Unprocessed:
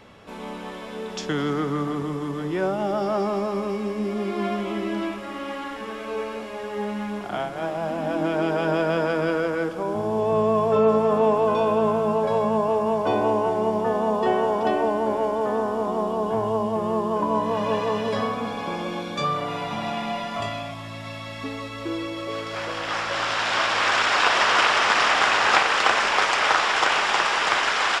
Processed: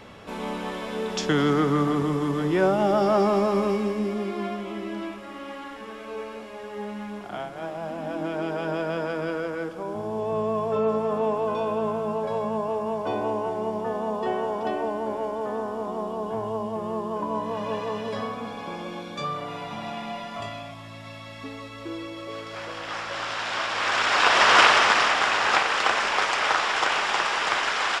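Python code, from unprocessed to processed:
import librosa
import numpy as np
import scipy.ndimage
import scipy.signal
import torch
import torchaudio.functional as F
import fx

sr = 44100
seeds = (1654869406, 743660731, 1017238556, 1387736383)

y = fx.gain(x, sr, db=fx.line((3.67, 3.5), (4.58, -5.5), (23.7, -5.5), (24.61, 4.0), (25.18, -3.0)))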